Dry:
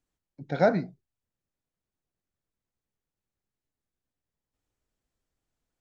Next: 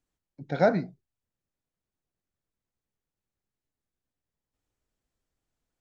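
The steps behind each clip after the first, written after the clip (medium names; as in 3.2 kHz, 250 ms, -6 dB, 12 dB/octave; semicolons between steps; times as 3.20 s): no audible change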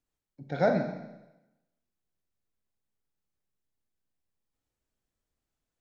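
Schroeder reverb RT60 0.98 s, combs from 29 ms, DRR 4.5 dB; trim -3.5 dB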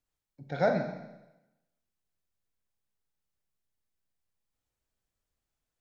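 peaking EQ 280 Hz -4.5 dB 1.4 oct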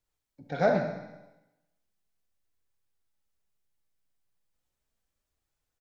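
flange 0.36 Hz, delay 1.9 ms, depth 5.6 ms, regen -53%; on a send: feedback delay 68 ms, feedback 57%, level -10 dB; on the sum: loudspeaker Doppler distortion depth 0.12 ms; trim +5.5 dB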